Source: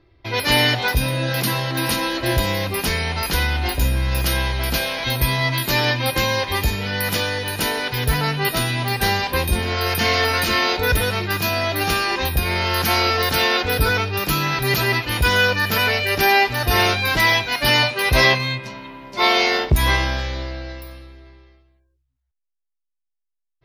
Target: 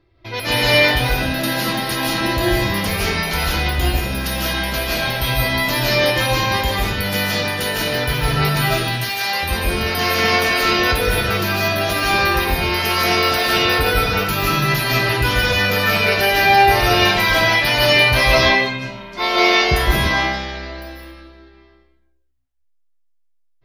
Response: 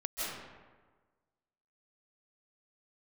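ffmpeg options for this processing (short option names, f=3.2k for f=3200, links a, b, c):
-filter_complex "[0:a]asettb=1/sr,asplit=3[a][b][c];[a]atrim=end=8.754[d];[b]atrim=start=8.75:end=9.43,asetpts=PTS-STARTPTS,afade=t=in:d=0.004:c=qsin,afade=t=out:st=0.676:d=0.004:c=qsin,highpass=f=1.4k:p=1[e];[c]atrim=start=9.426[f];[d][e]acrossfade=d=0.004:c1=hsin:c2=qsin[g];[g][f]acrossfade=d=0.004:c1=qsin:c2=hsin[h];[1:a]atrim=start_sample=2205,afade=t=out:st=0.41:d=0.01,atrim=end_sample=18522[i];[h][i]afir=irnorm=-1:irlink=0,volume=-1dB"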